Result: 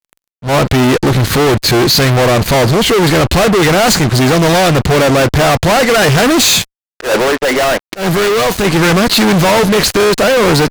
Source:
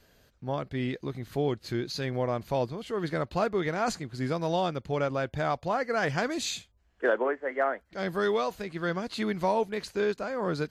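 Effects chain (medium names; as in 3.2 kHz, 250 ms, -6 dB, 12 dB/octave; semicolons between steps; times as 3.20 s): fuzz box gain 49 dB, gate -52 dBFS; 7.16–8.65 s: power-law waveshaper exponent 2; slow attack 127 ms; trim +5 dB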